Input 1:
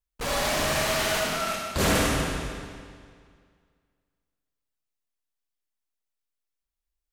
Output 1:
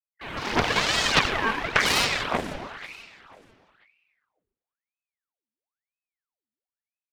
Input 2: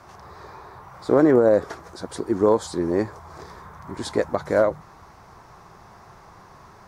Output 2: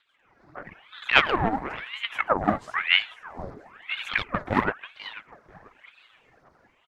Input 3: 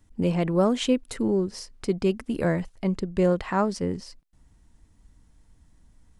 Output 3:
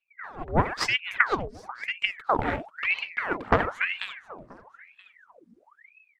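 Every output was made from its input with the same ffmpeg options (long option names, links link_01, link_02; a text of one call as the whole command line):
ffmpeg -i in.wav -filter_complex "[0:a]afwtdn=0.02,acrossover=split=1400[link_01][link_02];[link_01]acompressor=threshold=-29dB:ratio=8[link_03];[link_03][link_02]amix=inputs=2:normalize=0,lowshelf=frequency=110:gain=-11,dynaudnorm=framelen=190:gausssize=5:maxgain=12dB,aphaser=in_gain=1:out_gain=1:delay=4.5:decay=0.67:speed=1.7:type=sinusoidal,asplit=2[link_04][link_05];[link_05]asplit=3[link_06][link_07][link_08];[link_06]adelay=489,afreqshift=-76,volume=-14dB[link_09];[link_07]adelay=978,afreqshift=-152,volume=-24.2dB[link_10];[link_08]adelay=1467,afreqshift=-228,volume=-34.3dB[link_11];[link_09][link_10][link_11]amix=inputs=3:normalize=0[link_12];[link_04][link_12]amix=inputs=2:normalize=0,aeval=exprs='1.5*(cos(1*acos(clip(val(0)/1.5,-1,1)))-cos(1*PI/2))+0.133*(cos(6*acos(clip(val(0)/1.5,-1,1)))-cos(6*PI/2))+0.0841*(cos(7*acos(clip(val(0)/1.5,-1,1)))-cos(7*PI/2))':channel_layout=same,highshelf=frequency=3700:gain=-9,aeval=exprs='val(0)*sin(2*PI*1400*n/s+1400*0.85/1*sin(2*PI*1*n/s))':channel_layout=same,volume=-2dB" out.wav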